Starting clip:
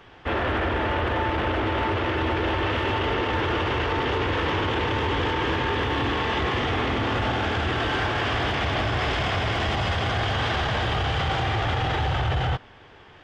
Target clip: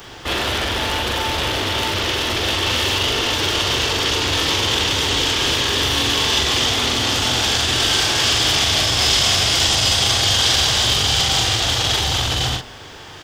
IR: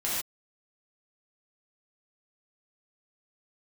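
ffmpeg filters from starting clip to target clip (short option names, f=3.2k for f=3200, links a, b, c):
-filter_complex "[0:a]acrossover=split=3600[a][b];[a]asoftclip=type=hard:threshold=-32.5dB[c];[b]crystalizer=i=8.5:c=0[d];[c][d]amix=inputs=2:normalize=0,asplit=2[e][f];[f]adelay=42,volume=-5dB[g];[e][g]amix=inputs=2:normalize=0,volume=9dB"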